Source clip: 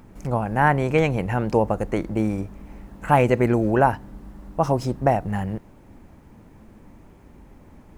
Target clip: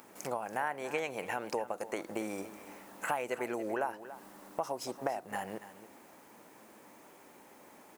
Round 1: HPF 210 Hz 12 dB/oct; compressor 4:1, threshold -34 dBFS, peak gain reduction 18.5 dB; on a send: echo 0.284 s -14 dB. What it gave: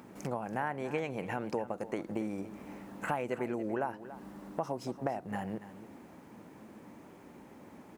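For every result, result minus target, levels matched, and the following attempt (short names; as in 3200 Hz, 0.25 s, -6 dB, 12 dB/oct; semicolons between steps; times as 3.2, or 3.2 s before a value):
8000 Hz band -8.5 dB; 250 Hz band +5.0 dB
HPF 210 Hz 12 dB/oct; compressor 4:1, threshold -34 dBFS, peak gain reduction 18.5 dB; high shelf 5700 Hz +10.5 dB; on a send: echo 0.284 s -14 dB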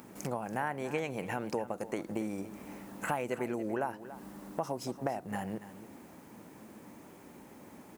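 250 Hz band +4.5 dB
HPF 470 Hz 12 dB/oct; compressor 4:1, threshold -34 dBFS, peak gain reduction 18 dB; high shelf 5700 Hz +10.5 dB; on a send: echo 0.284 s -14 dB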